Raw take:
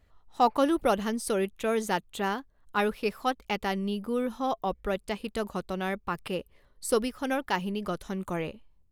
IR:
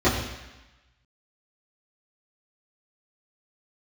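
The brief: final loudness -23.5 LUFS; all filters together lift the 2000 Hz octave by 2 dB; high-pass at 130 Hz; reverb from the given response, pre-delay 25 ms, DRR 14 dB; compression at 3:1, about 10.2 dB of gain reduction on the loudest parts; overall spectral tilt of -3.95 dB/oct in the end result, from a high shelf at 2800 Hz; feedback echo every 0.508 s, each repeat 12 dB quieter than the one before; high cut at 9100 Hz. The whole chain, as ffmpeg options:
-filter_complex "[0:a]highpass=130,lowpass=9.1k,equalizer=f=2k:t=o:g=4,highshelf=f=2.8k:g=-3.5,acompressor=threshold=-32dB:ratio=3,aecho=1:1:508|1016|1524:0.251|0.0628|0.0157,asplit=2[a][b];[1:a]atrim=start_sample=2205,adelay=25[c];[b][c]afir=irnorm=-1:irlink=0,volume=-32.5dB[d];[a][d]amix=inputs=2:normalize=0,volume=12dB"

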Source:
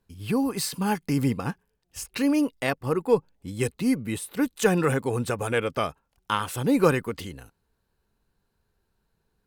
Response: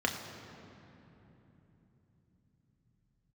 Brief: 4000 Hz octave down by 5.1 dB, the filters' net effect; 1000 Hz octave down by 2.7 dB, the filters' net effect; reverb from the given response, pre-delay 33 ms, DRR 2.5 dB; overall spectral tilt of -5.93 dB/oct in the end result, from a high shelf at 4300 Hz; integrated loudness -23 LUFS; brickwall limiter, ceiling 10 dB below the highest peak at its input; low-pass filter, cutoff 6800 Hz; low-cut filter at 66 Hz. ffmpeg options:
-filter_complex "[0:a]highpass=66,lowpass=6.8k,equalizer=f=1k:t=o:g=-3,equalizer=f=4k:t=o:g=-3.5,highshelf=f=4.3k:g=-5,alimiter=limit=-18.5dB:level=0:latency=1,asplit=2[a][b];[1:a]atrim=start_sample=2205,adelay=33[c];[b][c]afir=irnorm=-1:irlink=0,volume=-11dB[d];[a][d]amix=inputs=2:normalize=0,volume=4dB"

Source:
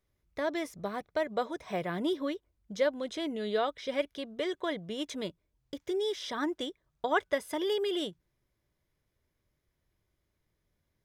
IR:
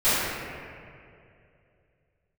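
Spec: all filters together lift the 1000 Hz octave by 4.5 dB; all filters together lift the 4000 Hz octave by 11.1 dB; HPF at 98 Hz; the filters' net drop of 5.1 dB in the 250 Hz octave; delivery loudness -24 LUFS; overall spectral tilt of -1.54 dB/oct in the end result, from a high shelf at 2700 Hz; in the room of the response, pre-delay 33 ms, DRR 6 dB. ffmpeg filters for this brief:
-filter_complex "[0:a]highpass=98,equalizer=f=250:t=o:g=-8,equalizer=f=1k:t=o:g=5,highshelf=f=2.7k:g=8,equalizer=f=4k:t=o:g=7.5,asplit=2[a][b];[1:a]atrim=start_sample=2205,adelay=33[c];[b][c]afir=irnorm=-1:irlink=0,volume=-24.5dB[d];[a][d]amix=inputs=2:normalize=0,volume=5.5dB"

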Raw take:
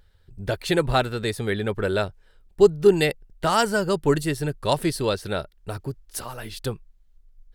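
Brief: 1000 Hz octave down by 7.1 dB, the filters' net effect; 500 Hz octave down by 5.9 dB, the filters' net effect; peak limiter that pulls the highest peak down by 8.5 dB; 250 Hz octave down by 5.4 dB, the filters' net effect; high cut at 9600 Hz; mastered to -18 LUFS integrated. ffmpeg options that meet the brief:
-af "lowpass=9.6k,equalizer=f=250:t=o:g=-6.5,equalizer=f=500:t=o:g=-3.5,equalizer=f=1k:t=o:g=-8.5,volume=13.5dB,alimiter=limit=-5dB:level=0:latency=1"

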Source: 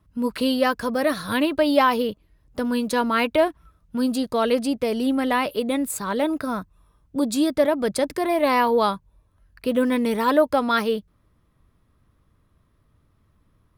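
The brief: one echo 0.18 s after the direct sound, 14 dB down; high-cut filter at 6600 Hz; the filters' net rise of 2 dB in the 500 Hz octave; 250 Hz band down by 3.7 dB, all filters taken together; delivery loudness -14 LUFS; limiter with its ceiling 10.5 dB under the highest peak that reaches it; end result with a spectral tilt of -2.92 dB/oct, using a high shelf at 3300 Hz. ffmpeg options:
-af "lowpass=6.6k,equalizer=f=250:t=o:g=-5,equalizer=f=500:t=o:g=3.5,highshelf=f=3.3k:g=-6.5,alimiter=limit=-14.5dB:level=0:latency=1,aecho=1:1:180:0.2,volume=11dB"

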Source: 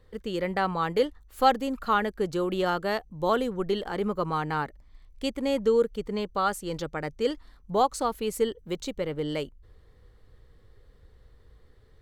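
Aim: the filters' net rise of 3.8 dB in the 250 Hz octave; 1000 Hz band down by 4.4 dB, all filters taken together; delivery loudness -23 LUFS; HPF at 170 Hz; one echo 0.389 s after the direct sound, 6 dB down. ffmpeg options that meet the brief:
-af "highpass=170,equalizer=f=250:t=o:g=6.5,equalizer=f=1k:t=o:g=-6.5,aecho=1:1:389:0.501,volume=4.5dB"

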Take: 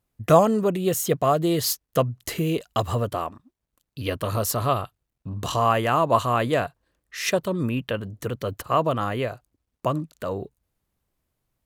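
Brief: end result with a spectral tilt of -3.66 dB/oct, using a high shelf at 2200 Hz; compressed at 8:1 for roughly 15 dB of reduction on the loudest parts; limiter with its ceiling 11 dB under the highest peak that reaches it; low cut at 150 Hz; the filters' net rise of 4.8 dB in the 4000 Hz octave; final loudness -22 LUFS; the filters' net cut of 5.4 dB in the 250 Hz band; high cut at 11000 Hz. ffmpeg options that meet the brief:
-af "highpass=150,lowpass=11k,equalizer=f=250:t=o:g=-7,highshelf=f=2.2k:g=3.5,equalizer=f=4k:t=o:g=3,acompressor=threshold=-26dB:ratio=8,volume=12.5dB,alimiter=limit=-10dB:level=0:latency=1"

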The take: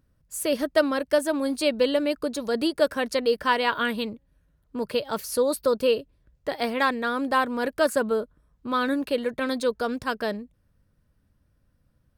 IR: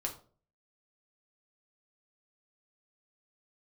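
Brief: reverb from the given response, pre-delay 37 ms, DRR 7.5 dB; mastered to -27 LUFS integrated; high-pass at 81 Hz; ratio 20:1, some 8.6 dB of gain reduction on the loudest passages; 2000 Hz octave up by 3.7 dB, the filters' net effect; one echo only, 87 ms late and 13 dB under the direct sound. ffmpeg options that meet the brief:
-filter_complex "[0:a]highpass=81,equalizer=f=2k:t=o:g=5,acompressor=threshold=-23dB:ratio=20,aecho=1:1:87:0.224,asplit=2[a][b];[1:a]atrim=start_sample=2205,adelay=37[c];[b][c]afir=irnorm=-1:irlink=0,volume=-9dB[d];[a][d]amix=inputs=2:normalize=0,volume=1.5dB"

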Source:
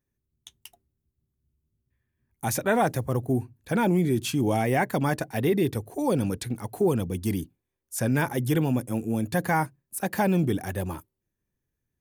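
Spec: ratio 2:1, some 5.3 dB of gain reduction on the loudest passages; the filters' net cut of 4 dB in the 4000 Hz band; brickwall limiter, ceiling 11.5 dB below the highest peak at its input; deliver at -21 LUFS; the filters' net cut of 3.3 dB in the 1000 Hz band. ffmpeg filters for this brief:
-af "equalizer=f=1k:t=o:g=-4.5,equalizer=f=4k:t=o:g=-5,acompressor=threshold=-29dB:ratio=2,volume=17.5dB,alimiter=limit=-11.5dB:level=0:latency=1"

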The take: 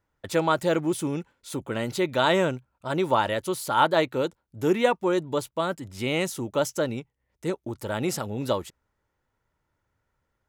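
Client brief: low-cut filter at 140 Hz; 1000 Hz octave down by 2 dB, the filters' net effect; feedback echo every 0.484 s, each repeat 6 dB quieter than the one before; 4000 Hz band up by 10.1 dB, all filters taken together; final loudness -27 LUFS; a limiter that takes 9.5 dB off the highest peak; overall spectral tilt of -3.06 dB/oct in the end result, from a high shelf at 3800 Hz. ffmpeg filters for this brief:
-af "highpass=140,equalizer=f=1k:t=o:g=-3.5,highshelf=f=3.8k:g=6.5,equalizer=f=4k:t=o:g=9,alimiter=limit=-15dB:level=0:latency=1,aecho=1:1:484|968|1452|1936|2420|2904:0.501|0.251|0.125|0.0626|0.0313|0.0157"

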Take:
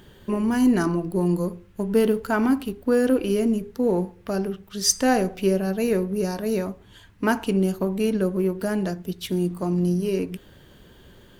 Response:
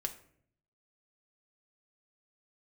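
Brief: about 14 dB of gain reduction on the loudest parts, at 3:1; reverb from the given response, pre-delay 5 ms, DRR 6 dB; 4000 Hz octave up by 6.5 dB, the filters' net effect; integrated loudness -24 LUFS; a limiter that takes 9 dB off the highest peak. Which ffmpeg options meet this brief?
-filter_complex "[0:a]equalizer=f=4k:t=o:g=9,acompressor=threshold=-31dB:ratio=3,alimiter=level_in=2dB:limit=-24dB:level=0:latency=1,volume=-2dB,asplit=2[a][b];[1:a]atrim=start_sample=2205,adelay=5[c];[b][c]afir=irnorm=-1:irlink=0,volume=-6.5dB[d];[a][d]amix=inputs=2:normalize=0,volume=8.5dB"

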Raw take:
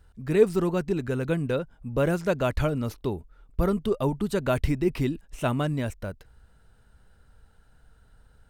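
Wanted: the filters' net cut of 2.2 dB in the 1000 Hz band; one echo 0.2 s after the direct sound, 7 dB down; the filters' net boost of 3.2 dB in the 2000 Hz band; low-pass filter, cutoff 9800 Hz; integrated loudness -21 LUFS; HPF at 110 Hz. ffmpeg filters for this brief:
-af "highpass=110,lowpass=9.8k,equalizer=f=1k:t=o:g=-6,equalizer=f=2k:t=o:g=7,aecho=1:1:200:0.447,volume=6dB"

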